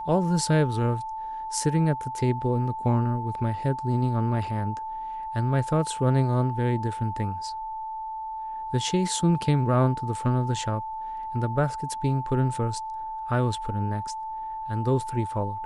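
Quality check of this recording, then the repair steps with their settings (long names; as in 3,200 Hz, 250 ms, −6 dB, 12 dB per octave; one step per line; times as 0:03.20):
whistle 880 Hz −31 dBFS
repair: notch filter 880 Hz, Q 30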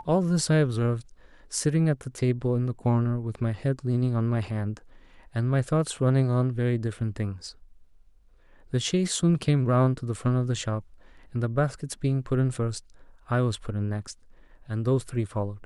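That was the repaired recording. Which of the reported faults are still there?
none of them is left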